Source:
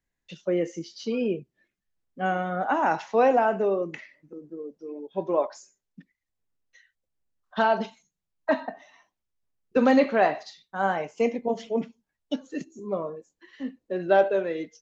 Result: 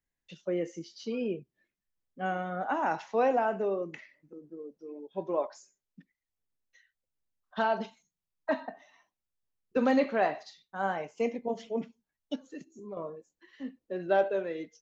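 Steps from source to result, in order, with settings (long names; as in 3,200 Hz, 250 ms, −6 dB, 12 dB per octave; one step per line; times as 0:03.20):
0:12.35–0:12.97: downward compressor 2.5 to 1, threshold −36 dBFS, peak gain reduction 9 dB
level −6 dB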